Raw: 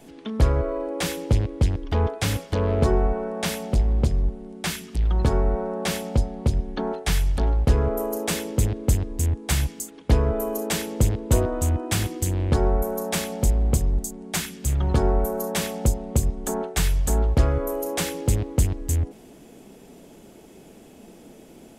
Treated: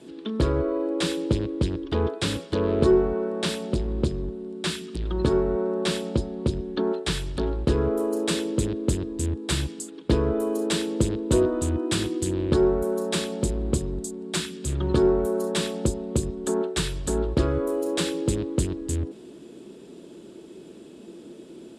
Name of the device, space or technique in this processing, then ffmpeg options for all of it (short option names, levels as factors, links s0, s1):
car door speaker: -af "highpass=85,equalizer=f=100:t=q:w=4:g=-7,equalizer=f=350:t=q:w=4:g=10,equalizer=f=760:t=q:w=4:g=-10,equalizer=f=2100:t=q:w=4:g=-6,equalizer=f=3800:t=q:w=4:g=5,equalizer=f=6200:t=q:w=4:g=-7,lowpass=f=9300:w=0.5412,lowpass=f=9300:w=1.3066"